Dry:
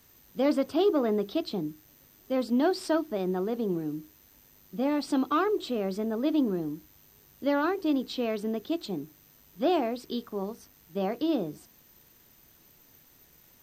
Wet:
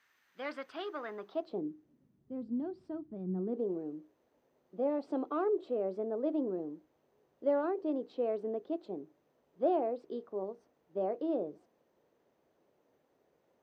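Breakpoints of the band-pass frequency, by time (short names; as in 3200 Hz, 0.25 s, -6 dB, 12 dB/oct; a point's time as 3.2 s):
band-pass, Q 2
1.09 s 1700 Hz
1.6 s 450 Hz
2.32 s 130 Hz
3.26 s 130 Hz
3.67 s 530 Hz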